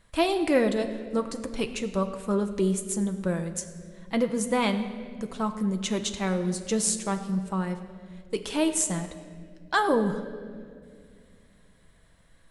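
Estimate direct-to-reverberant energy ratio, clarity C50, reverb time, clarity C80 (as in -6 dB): 6.0 dB, 10.5 dB, 2.1 s, 11.0 dB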